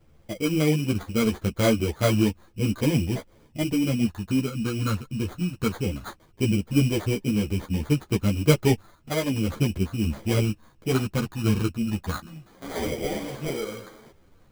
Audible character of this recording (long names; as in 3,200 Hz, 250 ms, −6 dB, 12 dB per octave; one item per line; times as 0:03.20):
phaser sweep stages 12, 0.15 Hz, lowest notch 770–2,800 Hz
aliases and images of a low sample rate 2,700 Hz, jitter 0%
a shimmering, thickened sound